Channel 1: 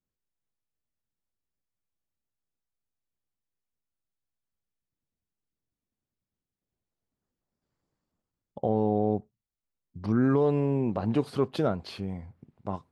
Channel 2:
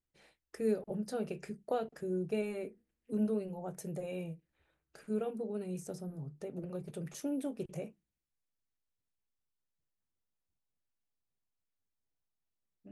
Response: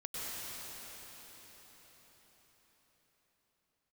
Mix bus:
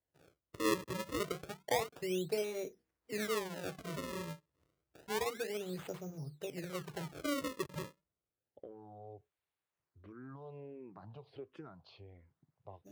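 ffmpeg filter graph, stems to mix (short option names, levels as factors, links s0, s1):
-filter_complex "[0:a]lowpass=3800,acompressor=threshold=0.0447:ratio=6,asplit=2[s0][s1];[s1]afreqshift=-1.4[s2];[s0][s2]amix=inputs=2:normalize=1,volume=0.211[s3];[1:a]acrusher=samples=33:mix=1:aa=0.000001:lfo=1:lforange=52.8:lforate=0.29,volume=1.12[s4];[s3][s4]amix=inputs=2:normalize=0,highpass=69,equalizer=f=220:t=o:w=0.36:g=-14"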